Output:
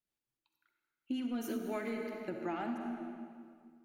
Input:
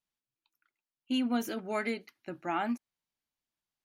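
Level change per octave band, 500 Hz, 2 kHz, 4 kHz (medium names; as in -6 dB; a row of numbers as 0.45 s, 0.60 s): -2.5 dB, -7.5 dB, -11.0 dB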